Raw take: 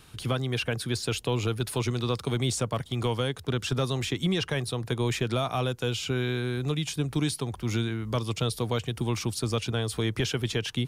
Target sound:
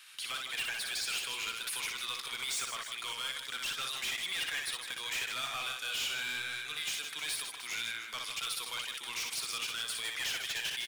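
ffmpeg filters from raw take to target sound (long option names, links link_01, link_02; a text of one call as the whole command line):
ffmpeg -i in.wav -af "highpass=frequency=1900:width_type=q:width=1.5,volume=33.5dB,asoftclip=hard,volume=-33.5dB,aecho=1:1:60|156|309.6|555.4|948.6:0.631|0.398|0.251|0.158|0.1" out.wav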